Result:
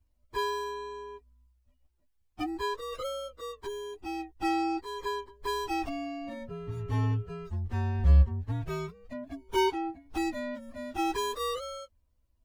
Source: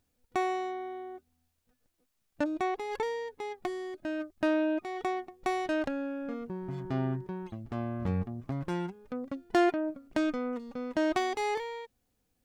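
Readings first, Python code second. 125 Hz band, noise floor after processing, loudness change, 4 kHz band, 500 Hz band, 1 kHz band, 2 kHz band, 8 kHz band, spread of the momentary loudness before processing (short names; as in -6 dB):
+8.0 dB, -71 dBFS, +1.0 dB, +5.0 dB, -2.0 dB, +1.0 dB, -2.0 dB, +5.0 dB, 10 LU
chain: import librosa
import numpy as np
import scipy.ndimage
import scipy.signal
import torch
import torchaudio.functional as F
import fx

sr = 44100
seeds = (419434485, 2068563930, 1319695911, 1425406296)

y = fx.partial_stretch(x, sr, pct=127)
y = fx.low_shelf_res(y, sr, hz=110.0, db=13.5, q=1.5)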